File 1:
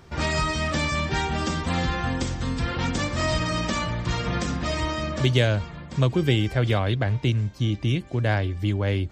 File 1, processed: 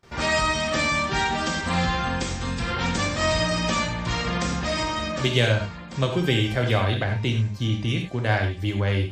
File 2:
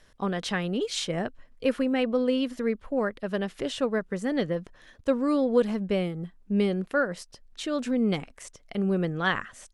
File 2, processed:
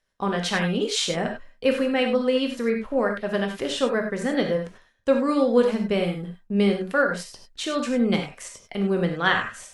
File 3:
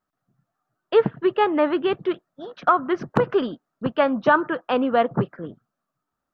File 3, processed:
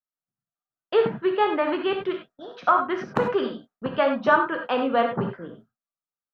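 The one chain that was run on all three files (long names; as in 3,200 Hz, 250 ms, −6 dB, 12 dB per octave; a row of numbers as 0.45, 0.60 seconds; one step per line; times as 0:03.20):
noise gate with hold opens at −40 dBFS
low-shelf EQ 380 Hz −5.5 dB
reverb whose tail is shaped and stops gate 120 ms flat, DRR 2.5 dB
loudness normalisation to −24 LKFS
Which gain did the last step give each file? +1.5, +4.5, −1.5 decibels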